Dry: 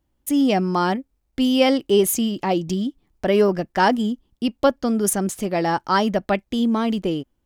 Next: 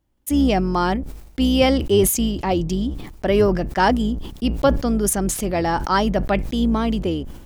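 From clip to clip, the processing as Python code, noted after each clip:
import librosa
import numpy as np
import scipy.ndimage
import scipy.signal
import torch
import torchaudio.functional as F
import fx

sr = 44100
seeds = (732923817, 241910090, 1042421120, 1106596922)

y = fx.octave_divider(x, sr, octaves=2, level_db=-5.0)
y = fx.sustainer(y, sr, db_per_s=66.0)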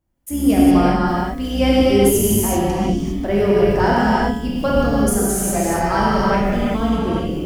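y = fx.peak_eq(x, sr, hz=3600.0, db=-5.5, octaves=1.0)
y = fx.comb_fb(y, sr, f0_hz=140.0, decay_s=0.96, harmonics='all', damping=0.0, mix_pct=70)
y = fx.rev_gated(y, sr, seeds[0], gate_ms=430, shape='flat', drr_db=-7.5)
y = y * librosa.db_to_amplitude(4.5)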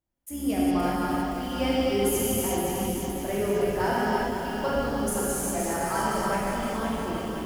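y = fx.low_shelf(x, sr, hz=300.0, db=-6.5)
y = fx.echo_crushed(y, sr, ms=517, feedback_pct=55, bits=6, wet_db=-6.0)
y = y * librosa.db_to_amplitude(-8.5)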